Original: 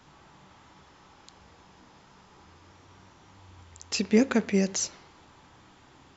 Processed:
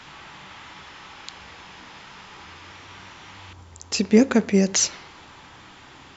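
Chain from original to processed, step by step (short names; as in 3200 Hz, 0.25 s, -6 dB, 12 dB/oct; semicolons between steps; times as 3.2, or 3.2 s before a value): bell 2500 Hz +12.5 dB 2.3 oct, from 3.53 s -3 dB, from 4.74 s +7.5 dB; gain +6 dB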